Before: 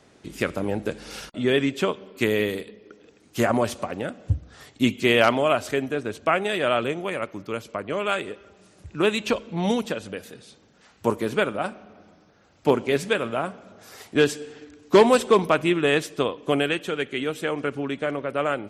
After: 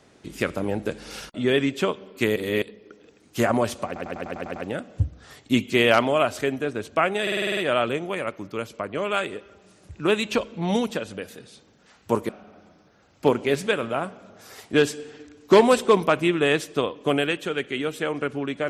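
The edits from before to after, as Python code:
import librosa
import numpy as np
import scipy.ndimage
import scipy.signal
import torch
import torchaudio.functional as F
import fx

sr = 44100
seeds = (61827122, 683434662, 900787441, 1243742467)

y = fx.edit(x, sr, fx.reverse_span(start_s=2.36, length_s=0.26),
    fx.stutter(start_s=3.86, slice_s=0.1, count=8),
    fx.stutter(start_s=6.52, slice_s=0.05, count=8),
    fx.cut(start_s=11.24, length_s=0.47), tone=tone)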